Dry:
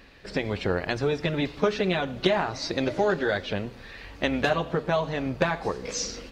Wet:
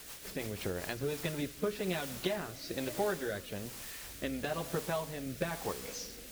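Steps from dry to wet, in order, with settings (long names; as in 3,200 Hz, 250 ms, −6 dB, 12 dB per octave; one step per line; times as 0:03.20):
bit-depth reduction 6 bits, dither triangular
rotating-speaker cabinet horn 6.3 Hz, later 1.1 Hz, at 0:00.36
level −8.5 dB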